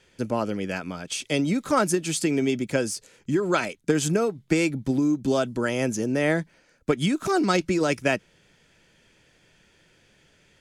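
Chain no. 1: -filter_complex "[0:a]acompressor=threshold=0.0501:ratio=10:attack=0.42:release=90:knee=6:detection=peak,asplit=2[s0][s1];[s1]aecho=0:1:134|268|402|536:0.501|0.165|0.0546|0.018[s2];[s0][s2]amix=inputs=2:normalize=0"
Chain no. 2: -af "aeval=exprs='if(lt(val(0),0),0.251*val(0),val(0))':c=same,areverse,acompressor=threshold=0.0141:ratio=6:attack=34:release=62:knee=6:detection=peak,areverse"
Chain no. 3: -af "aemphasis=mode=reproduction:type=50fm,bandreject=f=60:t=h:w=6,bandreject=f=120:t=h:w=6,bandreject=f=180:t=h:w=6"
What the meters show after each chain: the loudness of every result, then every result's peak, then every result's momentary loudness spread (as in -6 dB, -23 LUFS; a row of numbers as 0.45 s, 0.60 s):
-32.5 LUFS, -36.5 LUFS, -25.0 LUFS; -19.5 dBFS, -18.5 dBFS, -9.5 dBFS; 5 LU, 4 LU, 8 LU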